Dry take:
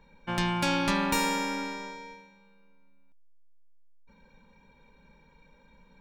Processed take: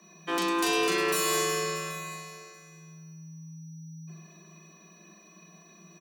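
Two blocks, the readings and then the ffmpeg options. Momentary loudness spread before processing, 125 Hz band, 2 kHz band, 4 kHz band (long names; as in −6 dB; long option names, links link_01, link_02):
16 LU, −4.0 dB, +1.0 dB, +2.0 dB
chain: -filter_complex "[0:a]crystalizer=i=2.5:c=0,alimiter=limit=-14.5dB:level=0:latency=1:release=232,asplit=2[link_01][link_02];[link_02]aecho=0:1:782:0.119[link_03];[link_01][link_03]amix=inputs=2:normalize=0,aeval=exprs='val(0)+0.000891*sin(2*PI*5700*n/s)':channel_layout=same,asplit=2[link_04][link_05];[link_05]aecho=0:1:40|104|206.4|370.2|632.4:0.631|0.398|0.251|0.158|0.1[link_06];[link_04][link_06]amix=inputs=2:normalize=0,afreqshift=160,asoftclip=type=tanh:threshold=-17.5dB"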